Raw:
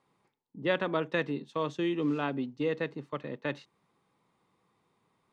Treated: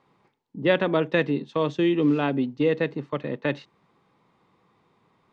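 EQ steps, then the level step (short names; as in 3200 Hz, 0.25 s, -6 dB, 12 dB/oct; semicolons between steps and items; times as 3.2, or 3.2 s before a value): dynamic EQ 1200 Hz, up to -5 dB, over -45 dBFS, Q 1.5; air absorption 100 m; +9.0 dB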